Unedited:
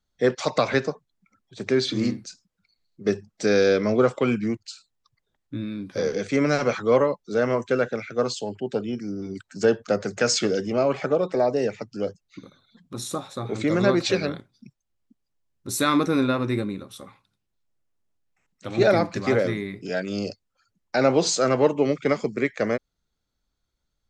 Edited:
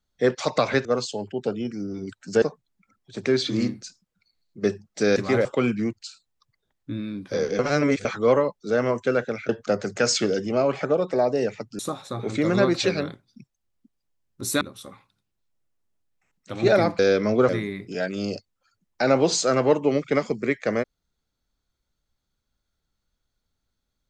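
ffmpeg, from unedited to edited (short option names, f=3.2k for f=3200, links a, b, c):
-filter_complex "[0:a]asplit=12[a][b][c][d][e][f][g][h][i][j][k][l];[a]atrim=end=0.852[m];[b]atrim=start=8.128:end=9.702[n];[c]atrim=start=0.848:end=3.592[o];[d]atrim=start=19.138:end=19.432[p];[e]atrim=start=4.088:end=6.232[q];[f]atrim=start=6.228:end=6.692,asetpts=PTS-STARTPTS,areverse[r];[g]atrim=start=6.688:end=8.132[s];[h]atrim=start=9.698:end=12.002[t];[i]atrim=start=13.048:end=15.872[u];[j]atrim=start=16.758:end=19.142[v];[k]atrim=start=3.588:end=4.092[w];[l]atrim=start=19.428[x];[m][n]acrossfade=d=0.004:c1=hsin:c2=hsin[y];[y][o]acrossfade=d=0.004:c1=hsin:c2=hsin[z];[z][p]acrossfade=d=0.004:c1=hsin:c2=hsin[aa];[aa][q]acrossfade=d=0.004:c1=hsin:c2=hsin[ab];[ab][r]acrossfade=d=0.004:c1=hsin:c2=hsin[ac];[ac][s]acrossfade=d=0.004:c1=hsin:c2=hsin[ad];[ad][t]acrossfade=d=0.004:c1=hsin:c2=hsin[ae];[ae][u]acrossfade=d=0.004:c1=hsin:c2=hsin[af];[af][v]acrossfade=d=0.004:c1=hsin:c2=hsin[ag];[ag][w]acrossfade=d=0.004:c1=hsin:c2=hsin[ah];[ah][x]acrossfade=d=0.004:c1=hsin:c2=hsin"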